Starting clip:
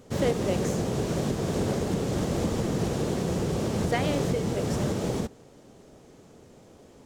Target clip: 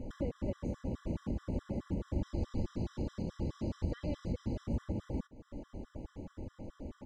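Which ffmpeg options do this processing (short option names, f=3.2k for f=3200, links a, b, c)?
-filter_complex "[0:a]asettb=1/sr,asplit=3[a][b][c];[a]atrim=end=2.234[d];[b]atrim=start=2.23:end=4.66,asetpts=PTS-STARTPTS,afade=t=in:d=0.004:c=qsin,afade=t=out:st=2.426:d=0.004:c=qsin,equalizer=f=4.6k:t=o:w=0.94:g=9[e];[c]atrim=start=4.656[f];[d][e]acrossfade=d=0.004:c1=hsin:c2=qsin[g];[g][f]acrossfade=d=0.004:c1=qsin:c2=hsin,acompressor=threshold=-42dB:ratio=6,aemphasis=mode=reproduction:type=riaa,aecho=1:1:3.5:0.54,afftfilt=real='re*gt(sin(2*PI*4.7*pts/sr)*(1-2*mod(floor(b*sr/1024/1000),2)),0)':imag='im*gt(sin(2*PI*4.7*pts/sr)*(1-2*mod(floor(b*sr/1024/1000),2)),0)':win_size=1024:overlap=0.75,volume=1dB"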